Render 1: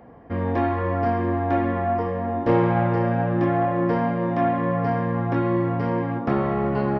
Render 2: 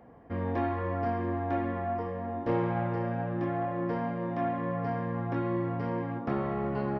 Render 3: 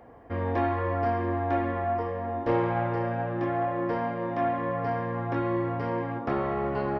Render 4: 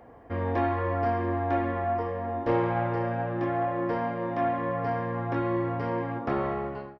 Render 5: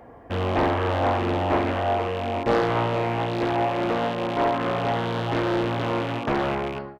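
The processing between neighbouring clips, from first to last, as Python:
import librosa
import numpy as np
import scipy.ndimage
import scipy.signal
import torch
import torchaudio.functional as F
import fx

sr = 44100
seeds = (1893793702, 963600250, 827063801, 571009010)

y1 = fx.rider(x, sr, range_db=3, speed_s=2.0)
y1 = y1 * 10.0 ** (-9.0 / 20.0)
y2 = fx.peak_eq(y1, sr, hz=180.0, db=-9.0, octaves=0.97)
y2 = y2 * 10.0 ** (5.0 / 20.0)
y3 = fx.fade_out_tail(y2, sr, length_s=0.53)
y4 = fx.rattle_buzz(y3, sr, strikes_db=-40.0, level_db=-30.0)
y4 = fx.doppler_dist(y4, sr, depth_ms=0.79)
y4 = y4 * 10.0 ** (4.5 / 20.0)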